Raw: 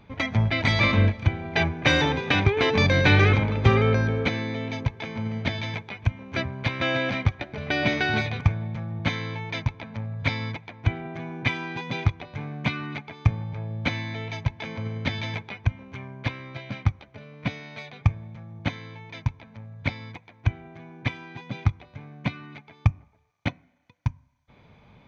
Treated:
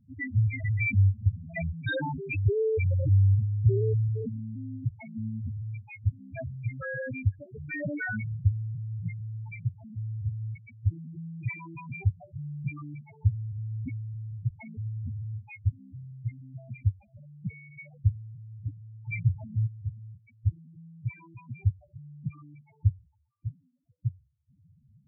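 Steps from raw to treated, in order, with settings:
0:19.08–0:19.67: leveller curve on the samples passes 5
spectral peaks only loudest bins 2

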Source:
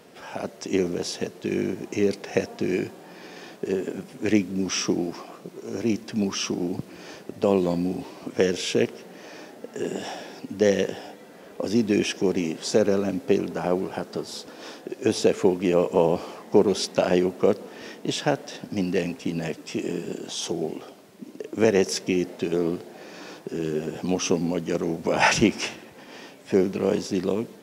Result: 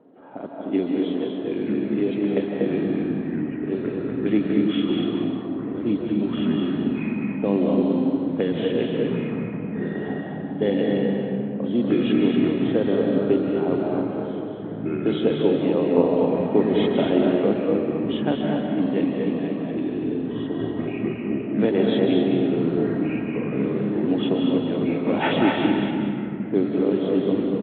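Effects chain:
hearing-aid frequency compression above 2,800 Hz 4 to 1
parametric band 280 Hz +11 dB 0.38 octaves
low-pass that shuts in the quiet parts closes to 900 Hz, open at −12.5 dBFS
delay with pitch and tempo change per echo 687 ms, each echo −5 semitones, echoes 3, each echo −6 dB
high-pass filter 170 Hz 6 dB per octave
high-shelf EQ 2,300 Hz −8.5 dB
single-tap delay 241 ms −6 dB
comb and all-pass reverb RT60 2.2 s, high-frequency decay 0.45×, pre-delay 115 ms, DRR 0.5 dB
level −3.5 dB

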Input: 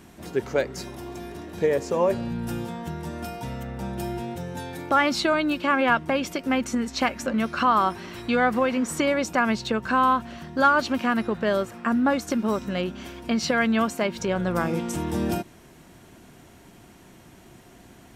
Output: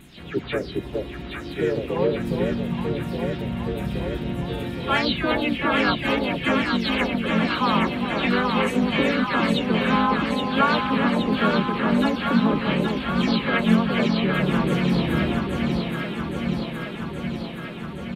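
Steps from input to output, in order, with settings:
every frequency bin delayed by itself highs early, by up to 219 ms
drawn EQ curve 160 Hz 0 dB, 700 Hz −7 dB, 1,300 Hz −6 dB, 3,700 Hz +5 dB, 5,900 Hz −18 dB, 9,600 Hz −11 dB
delay that swaps between a low-pass and a high-pass 410 ms, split 900 Hz, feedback 85%, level −2.5 dB
pitch-shifted copies added −4 semitones −3 dB
level +1.5 dB

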